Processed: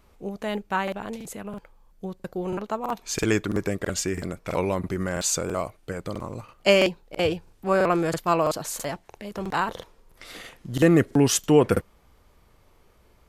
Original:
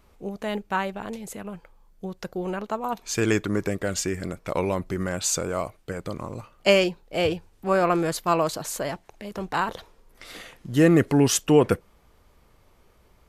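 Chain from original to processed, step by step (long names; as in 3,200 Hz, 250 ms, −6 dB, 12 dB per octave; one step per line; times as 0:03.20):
regular buffer underruns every 0.33 s, samples 2,048, repeat, from 0:00.83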